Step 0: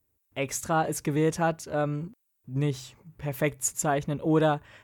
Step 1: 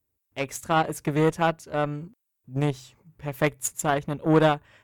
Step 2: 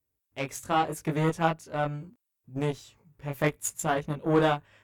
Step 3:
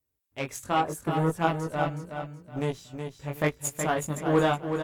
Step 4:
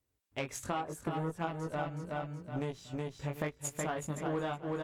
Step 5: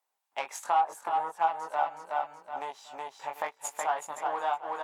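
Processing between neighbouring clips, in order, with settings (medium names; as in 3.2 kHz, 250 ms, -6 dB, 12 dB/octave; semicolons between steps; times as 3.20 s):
Chebyshev shaper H 3 -21 dB, 7 -25 dB, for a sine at -11.5 dBFS; dynamic bell 5.8 kHz, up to -4 dB, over -49 dBFS, Q 1.2; trim +5.5 dB
chorus 0.78 Hz, delay 18 ms, depth 3.8 ms
time-frequency box 0.81–1.36 s, 1.8–7.4 kHz -11 dB; on a send: feedback delay 371 ms, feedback 28%, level -7 dB
treble shelf 11 kHz -11 dB; compression 5:1, threshold -36 dBFS, peak gain reduction 16.5 dB; trim +2.5 dB
resonant high-pass 840 Hz, resonance Q 4.9; trim +1.5 dB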